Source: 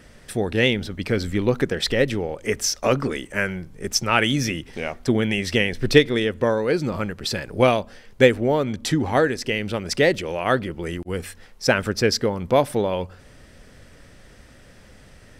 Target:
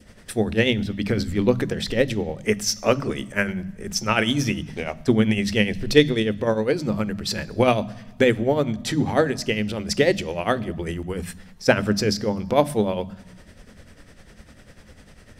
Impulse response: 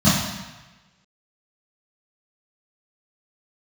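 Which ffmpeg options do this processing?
-filter_complex "[0:a]adynamicequalizer=threshold=0.0158:dfrequency=1400:dqfactor=0.93:tfrequency=1400:tqfactor=0.93:attack=5:release=100:ratio=0.375:range=2.5:mode=cutabove:tftype=bell,tremolo=f=10:d=0.68,asplit=2[link_01][link_02];[1:a]atrim=start_sample=2205,lowshelf=frequency=420:gain=5,highshelf=frequency=5100:gain=10.5[link_03];[link_02][link_03]afir=irnorm=-1:irlink=0,volume=-40.5dB[link_04];[link_01][link_04]amix=inputs=2:normalize=0,volume=2.5dB"

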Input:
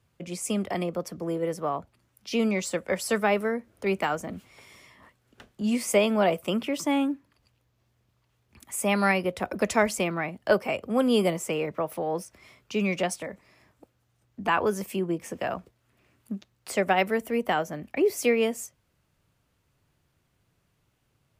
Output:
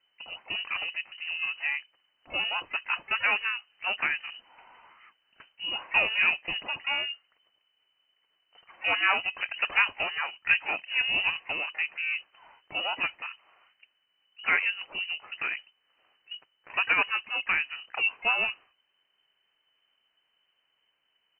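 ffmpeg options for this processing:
ffmpeg -i in.wav -filter_complex "[0:a]equalizer=frequency=240:width_type=o:width=1.7:gain=-9.5,asplit=3[link_01][link_02][link_03];[link_02]asetrate=33038,aresample=44100,atempo=1.33484,volume=-9dB[link_04];[link_03]asetrate=88200,aresample=44100,atempo=0.5,volume=-15dB[link_05];[link_01][link_04][link_05]amix=inputs=3:normalize=0,lowpass=frequency=2600:width_type=q:width=0.5098,lowpass=frequency=2600:width_type=q:width=0.6013,lowpass=frequency=2600:width_type=q:width=0.9,lowpass=frequency=2600:width_type=q:width=2.563,afreqshift=-3100" out.wav

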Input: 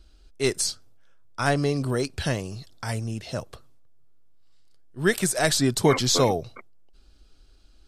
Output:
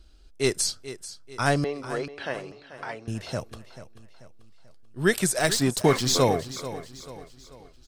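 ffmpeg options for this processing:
ffmpeg -i in.wav -filter_complex "[0:a]asettb=1/sr,asplit=3[link_01][link_02][link_03];[link_01]atrim=end=1.644[link_04];[link_02]atrim=start=1.64:end=3.08,asetpts=PTS-STARTPTS,afade=type=in:duration=0.004:curve=qsin,afade=type=out:start_time=1.436:duration=0.004:curve=qsin,highpass=470,lowpass=2400[link_05];[link_03]atrim=start=3.076[link_06];[link_04][link_05]acrossfade=duration=0.004:curve1=hsin:curve2=qsin[link_07];[link_07][link_06]acrossfade=duration=0.004:curve1=qsin:curve2=hsin,asettb=1/sr,asplit=3[link_08][link_09][link_10];[link_08]atrim=end=5.394[link_11];[link_09]atrim=start=5.39:end=6.22,asetpts=PTS-STARTPTS,afade=type=in:duration=0.004:curve=qsin,afade=type=out:start_time=0.826:duration=0.004:curve=qsin,aeval=exprs='sgn(val(0))*max(abs(val(0))-0.0188,0)':channel_layout=same[link_12];[link_10]atrim=start=6.216[link_13];[link_11][link_12]acrossfade=duration=0.004:curve1=hsin:curve2=qsin[link_14];[link_14][link_13]acrossfade=duration=0.004:curve1=qsin:curve2=hsin,aecho=1:1:438|876|1314|1752:0.2|0.0878|0.0386|0.017" out.wav

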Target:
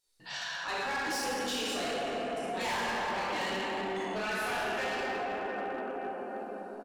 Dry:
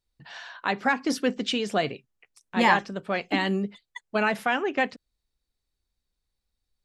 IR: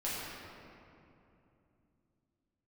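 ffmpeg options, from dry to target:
-filter_complex "[1:a]atrim=start_sample=2205,asetrate=24696,aresample=44100[link_01];[0:a][link_01]afir=irnorm=-1:irlink=0,asplit=2[link_02][link_03];[link_03]acompressor=threshold=-28dB:ratio=6,volume=-1.5dB[link_04];[link_02][link_04]amix=inputs=2:normalize=0,bass=frequency=250:gain=-15,treble=frequency=4000:gain=11,asoftclip=type=tanh:threshold=-16.5dB,alimiter=limit=-23dB:level=0:latency=1:release=182,aecho=1:1:55|65:0.168|0.237,volume=24dB,asoftclip=hard,volume=-24dB,volume=-6dB"

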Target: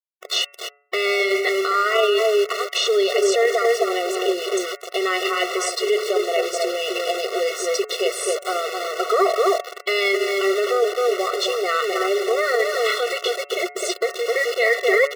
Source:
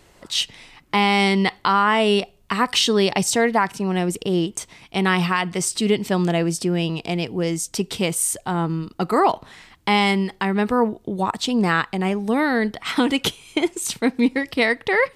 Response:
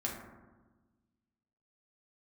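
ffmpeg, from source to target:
-filter_complex "[0:a]asplit=2[link_01][link_02];[link_02]acrusher=samples=15:mix=1:aa=0.000001,volume=-12dB[link_03];[link_01][link_03]amix=inputs=2:normalize=0,equalizer=frequency=910:width=0.79:gain=-3,asplit=3[link_04][link_05][link_06];[link_04]afade=type=out:start_time=2.17:duration=0.02[link_07];[link_05]acompressor=threshold=-27dB:ratio=10,afade=type=in:start_time=2.17:duration=0.02,afade=type=out:start_time=2.75:duration=0.02[link_08];[link_06]afade=type=in:start_time=2.75:duration=0.02[link_09];[link_07][link_08][link_09]amix=inputs=3:normalize=0,asubboost=boost=2.5:cutoff=96,asplit=2[link_10][link_11];[link_11]adelay=260,lowpass=frequency=1200:poles=1,volume=-4dB,asplit=2[link_12][link_13];[link_13]adelay=260,lowpass=frequency=1200:poles=1,volume=0.2,asplit=2[link_14][link_15];[link_15]adelay=260,lowpass=frequency=1200:poles=1,volume=0.2[link_16];[link_12][link_14][link_16]amix=inputs=3:normalize=0[link_17];[link_10][link_17]amix=inputs=2:normalize=0,acrusher=bits=4:mix=0:aa=0.000001,acrossover=split=6200[link_18][link_19];[link_19]acompressor=threshold=-45dB:ratio=4:attack=1:release=60[link_20];[link_18][link_20]amix=inputs=2:normalize=0,bandreject=frequency=142.7:width_type=h:width=4,bandreject=frequency=285.4:width_type=h:width=4,bandreject=frequency=428.1:width_type=h:width=4,bandreject=frequency=570.8:width_type=h:width=4,bandreject=frequency=713.5:width_type=h:width=4,bandreject=frequency=856.2:width_type=h:width=4,bandreject=frequency=998.9:width_type=h:width=4,bandreject=frequency=1141.6:width_type=h:width=4,bandreject=frequency=1284.3:width_type=h:width=4,bandreject=frequency=1427:width_type=h:width=4,bandreject=frequency=1569.7:width_type=h:width=4,bandreject=frequency=1712.4:width_type=h:width=4,bandreject=frequency=1855.1:width_type=h:width=4,bandreject=frequency=1997.8:width_type=h:width=4,bandreject=frequency=2140.5:width_type=h:width=4,bandreject=frequency=2283.2:width_type=h:width=4,bandreject=frequency=2425.9:width_type=h:width=4,bandreject=frequency=2568.6:width_type=h:width=4,bandreject=frequency=2711.3:width_type=h:width=4,alimiter=limit=-15dB:level=0:latency=1:release=11,afftfilt=real='re*eq(mod(floor(b*sr/1024/370),2),1)':imag='im*eq(mod(floor(b*sr/1024/370),2),1)':win_size=1024:overlap=0.75,volume=8.5dB"

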